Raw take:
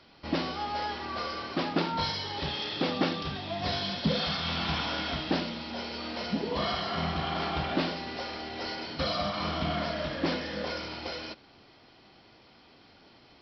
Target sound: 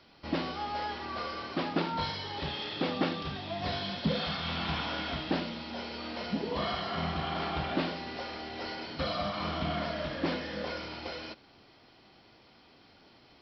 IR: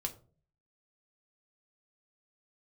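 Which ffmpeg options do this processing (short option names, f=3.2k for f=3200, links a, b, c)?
-filter_complex "[0:a]acrossover=split=4400[a][b];[b]acompressor=threshold=-51dB:ratio=4:attack=1:release=60[c];[a][c]amix=inputs=2:normalize=0,volume=-2dB"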